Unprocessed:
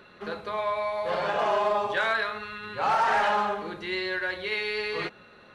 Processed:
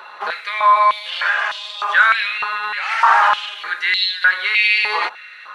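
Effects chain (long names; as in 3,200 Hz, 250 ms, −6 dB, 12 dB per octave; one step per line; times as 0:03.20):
boost into a limiter +22 dB
high-pass on a step sequencer 3.3 Hz 900–3,700 Hz
level −10 dB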